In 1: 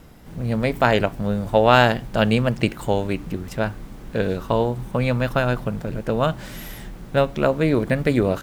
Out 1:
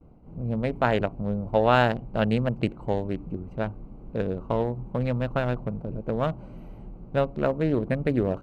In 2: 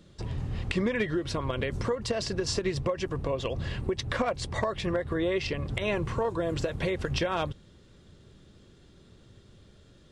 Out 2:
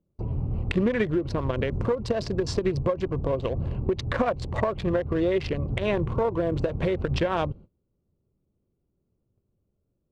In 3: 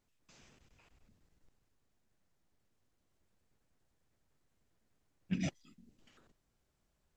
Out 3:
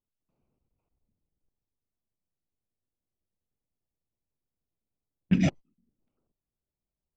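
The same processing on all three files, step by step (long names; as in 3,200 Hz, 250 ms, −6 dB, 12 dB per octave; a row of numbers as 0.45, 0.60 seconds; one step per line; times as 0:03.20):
adaptive Wiener filter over 25 samples
noise gate −48 dBFS, range −24 dB
high-shelf EQ 3,900 Hz −10.5 dB
loudness normalisation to −27 LKFS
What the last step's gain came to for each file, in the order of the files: −4.5, +5.0, +12.5 decibels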